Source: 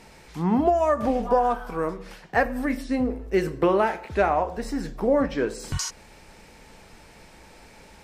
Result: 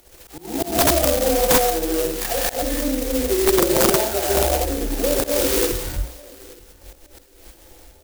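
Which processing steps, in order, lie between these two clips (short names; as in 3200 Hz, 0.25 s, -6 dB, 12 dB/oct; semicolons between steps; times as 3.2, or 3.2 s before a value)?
spectral delay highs early, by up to 0.647 s; notches 60/120/180/240/300/360/420/480/540 Hz; gate -45 dBFS, range -59 dB; high shelf 5700 Hz +5.5 dB; in parallel at +1 dB: compressor 5:1, threshold -32 dBFS, peak gain reduction 14.5 dB; on the sum: non-linear reverb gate 0.3 s rising, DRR -7 dB; upward compressor, threshold -18 dBFS; auto swell 0.169 s; fixed phaser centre 440 Hz, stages 4; wrapped overs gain 9 dB; on a send: feedback echo 0.876 s, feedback 21%, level -23 dB; on the sum: clock jitter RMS 0.14 ms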